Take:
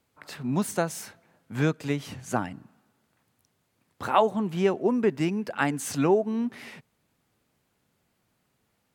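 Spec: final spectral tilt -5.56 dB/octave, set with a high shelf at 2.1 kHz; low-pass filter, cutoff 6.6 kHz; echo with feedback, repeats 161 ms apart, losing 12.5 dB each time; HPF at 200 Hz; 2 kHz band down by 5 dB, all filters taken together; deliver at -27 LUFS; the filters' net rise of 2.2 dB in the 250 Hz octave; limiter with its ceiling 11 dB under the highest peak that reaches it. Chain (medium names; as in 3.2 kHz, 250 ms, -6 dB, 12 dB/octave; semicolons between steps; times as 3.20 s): high-pass 200 Hz; low-pass 6.6 kHz; peaking EQ 250 Hz +5 dB; peaking EQ 2 kHz -4 dB; treble shelf 2.1 kHz -5.5 dB; peak limiter -20 dBFS; feedback delay 161 ms, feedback 24%, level -12.5 dB; trim +3 dB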